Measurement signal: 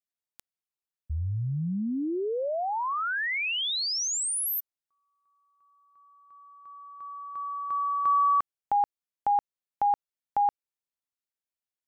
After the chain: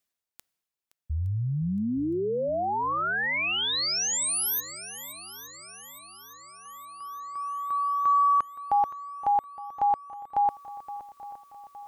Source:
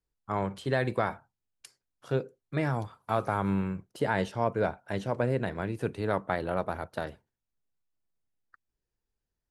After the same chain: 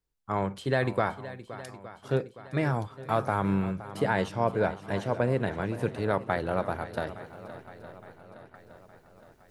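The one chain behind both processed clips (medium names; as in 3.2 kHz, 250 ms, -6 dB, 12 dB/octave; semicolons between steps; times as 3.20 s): reverse; upward compressor, threshold -52 dBFS; reverse; shuffle delay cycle 865 ms, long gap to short 1.5:1, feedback 50%, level -15 dB; trim +1.5 dB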